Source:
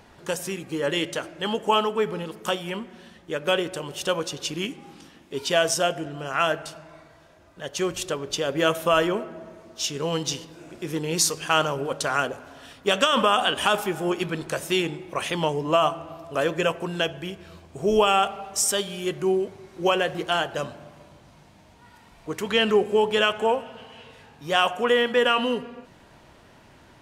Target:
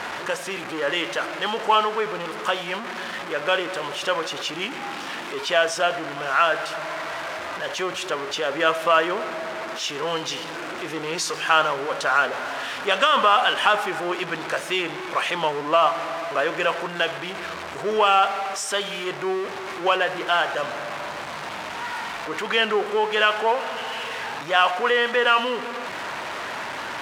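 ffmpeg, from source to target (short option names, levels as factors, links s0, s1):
-af "aeval=exprs='val(0)+0.5*0.0596*sgn(val(0))':c=same,bandpass=f=1400:t=q:w=0.79:csg=0,volume=1.5"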